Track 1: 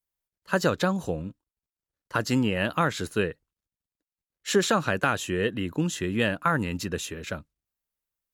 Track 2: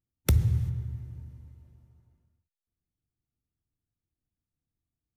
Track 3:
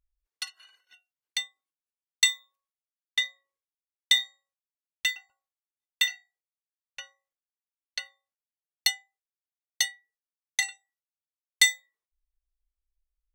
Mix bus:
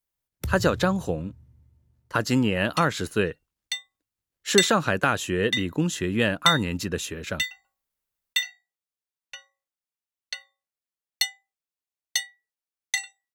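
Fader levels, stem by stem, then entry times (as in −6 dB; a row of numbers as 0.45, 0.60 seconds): +2.0, −8.5, 0.0 decibels; 0.00, 0.15, 2.35 seconds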